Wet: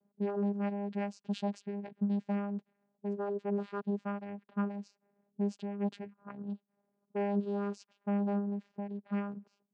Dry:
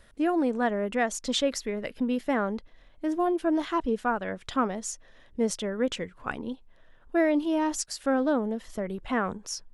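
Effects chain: vocoder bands 8, saw 202 Hz; low-pass opened by the level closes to 570 Hz, open at -26 dBFS; gain -6.5 dB

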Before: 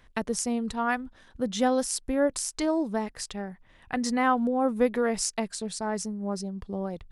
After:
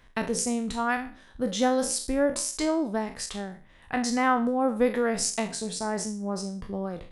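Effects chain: spectral trails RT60 0.40 s

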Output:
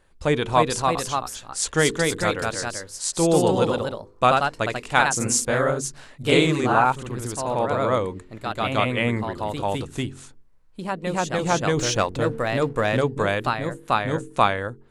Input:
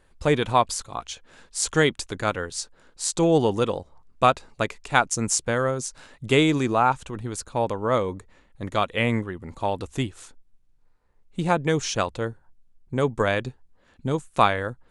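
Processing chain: de-hum 45.15 Hz, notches 10; echoes that change speed 0.322 s, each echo +1 st, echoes 2; 11.77–13.01 sample leveller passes 1

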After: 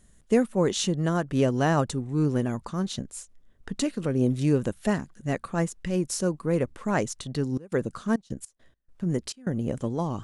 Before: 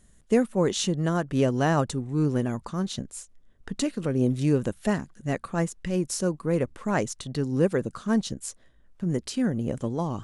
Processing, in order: 7.47–9.6 step gate ".x.x.xxx" 103 bpm -24 dB

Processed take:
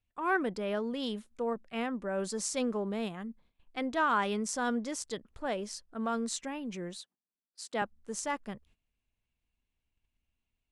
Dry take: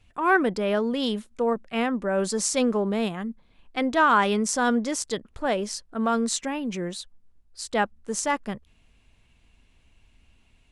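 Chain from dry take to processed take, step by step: 7–7.82 HPF 180 Hz 24 dB/oct; gate -52 dBFS, range -15 dB; gain -9 dB

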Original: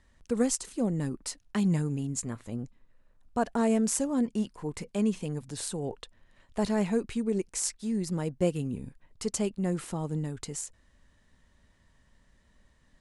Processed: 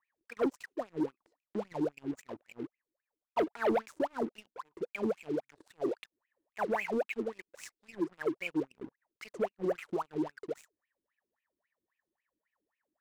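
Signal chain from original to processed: wah 3.7 Hz 310–2600 Hz, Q 18; sample leveller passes 3; gain +6 dB

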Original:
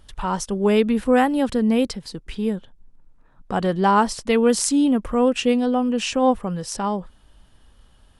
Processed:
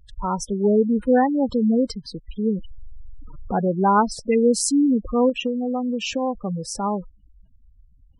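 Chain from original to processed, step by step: 2.45–3.65 zero-crossing step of -28.5 dBFS; spectral gate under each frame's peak -15 dB strong; 5.29–6.41 compressor, threshold -21 dBFS, peak gain reduction 8 dB

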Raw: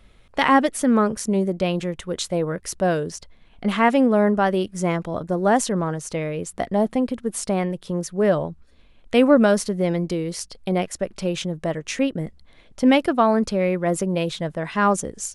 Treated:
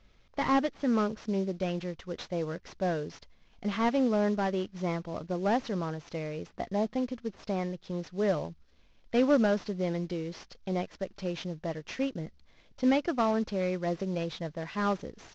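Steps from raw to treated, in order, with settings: CVSD 32 kbps; gain -9 dB

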